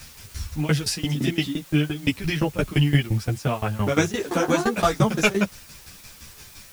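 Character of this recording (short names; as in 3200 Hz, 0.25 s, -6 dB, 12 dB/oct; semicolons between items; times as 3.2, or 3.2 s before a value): tremolo saw down 5.8 Hz, depth 95%; a quantiser's noise floor 8-bit, dither triangular; a shimmering, thickened sound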